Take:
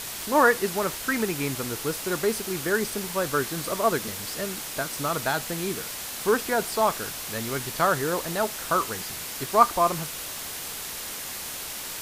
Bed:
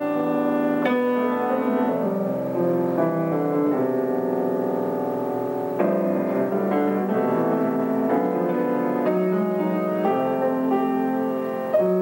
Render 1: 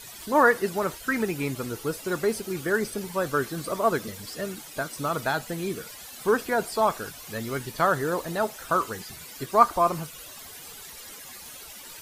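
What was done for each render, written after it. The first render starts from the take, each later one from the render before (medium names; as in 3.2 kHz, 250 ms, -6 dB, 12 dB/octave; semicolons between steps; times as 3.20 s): noise reduction 13 dB, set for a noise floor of -36 dBFS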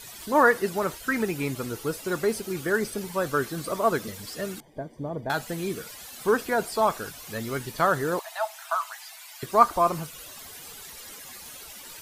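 4.60–5.30 s: boxcar filter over 33 samples; 8.19–9.43 s: rippled Chebyshev high-pass 640 Hz, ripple 3 dB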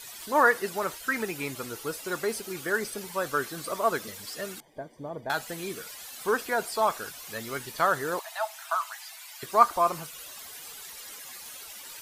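bass shelf 380 Hz -10.5 dB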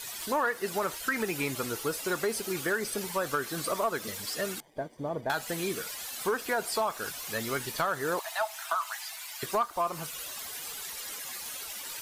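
compression 5:1, threshold -29 dBFS, peak gain reduction 15 dB; waveshaping leveller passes 1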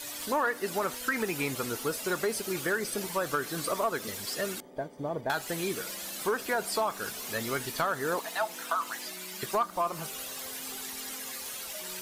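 add bed -29 dB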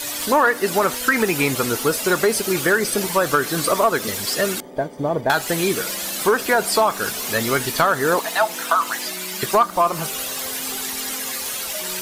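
trim +12 dB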